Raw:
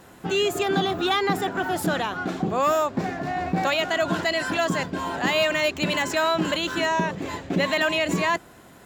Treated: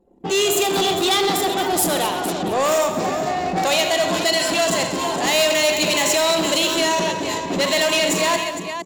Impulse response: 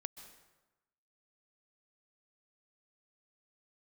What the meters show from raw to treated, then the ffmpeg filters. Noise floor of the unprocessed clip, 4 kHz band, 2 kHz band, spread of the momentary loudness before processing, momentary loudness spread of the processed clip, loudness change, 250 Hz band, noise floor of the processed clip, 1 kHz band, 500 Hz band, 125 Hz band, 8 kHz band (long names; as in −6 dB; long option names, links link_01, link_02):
−49 dBFS, +8.5 dB, +2.5 dB, 6 LU, 6 LU, +5.5 dB, +2.5 dB, −28 dBFS, +4.0 dB, +5.5 dB, −1.5 dB, +15.0 dB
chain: -filter_complex "[0:a]equalizer=frequency=1500:width_type=o:width=0.71:gain=-10.5,asplit=2[link_01][link_02];[link_02]aecho=0:1:43|79|133|460:0.237|0.282|0.251|0.282[link_03];[link_01][link_03]amix=inputs=2:normalize=0,asoftclip=type=tanh:threshold=-22.5dB,anlmdn=0.398,bass=frequency=250:gain=-9,treble=frequency=4000:gain=8,asplit=2[link_04][link_05];[link_05]aecho=0:1:224:0.237[link_06];[link_04][link_06]amix=inputs=2:normalize=0,volume=8.5dB"